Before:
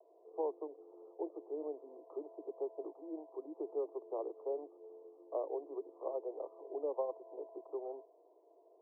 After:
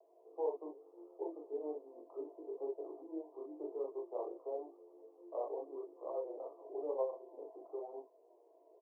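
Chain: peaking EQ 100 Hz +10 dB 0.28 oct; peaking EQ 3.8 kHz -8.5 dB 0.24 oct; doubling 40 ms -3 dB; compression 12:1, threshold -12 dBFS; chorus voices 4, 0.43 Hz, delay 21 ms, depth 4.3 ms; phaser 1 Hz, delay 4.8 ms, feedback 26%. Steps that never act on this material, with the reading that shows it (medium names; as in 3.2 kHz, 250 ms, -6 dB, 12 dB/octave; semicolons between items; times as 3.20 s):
peaking EQ 100 Hz: input has nothing below 250 Hz; peaking EQ 3.8 kHz: input has nothing above 1.1 kHz; compression, threshold -12 dBFS: peak at its input -22.5 dBFS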